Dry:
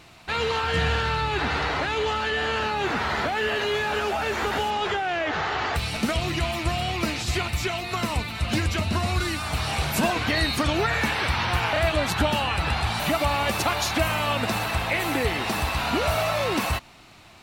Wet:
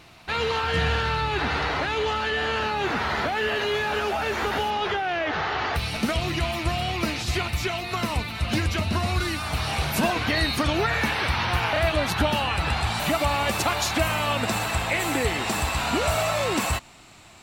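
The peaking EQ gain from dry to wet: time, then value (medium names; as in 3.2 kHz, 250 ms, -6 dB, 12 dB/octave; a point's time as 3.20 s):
peaking EQ 7.6 kHz 0.26 oct
4.45 s -4.5 dB
4.85 s -13.5 dB
5.53 s -13.5 dB
6.05 s -4.5 dB
12.30 s -4.5 dB
12.77 s +4.5 dB
14.29 s +4.5 dB
14.70 s +11.5 dB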